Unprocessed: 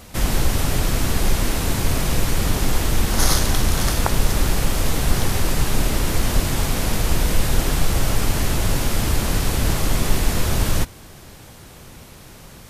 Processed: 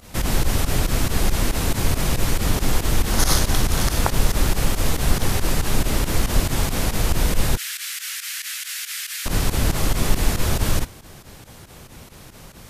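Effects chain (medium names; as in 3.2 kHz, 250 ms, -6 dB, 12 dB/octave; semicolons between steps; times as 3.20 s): 7.57–9.26 s: steep high-pass 1.6 kHz 36 dB/octave; volume shaper 139 bpm, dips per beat 2, -15 dB, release 72 ms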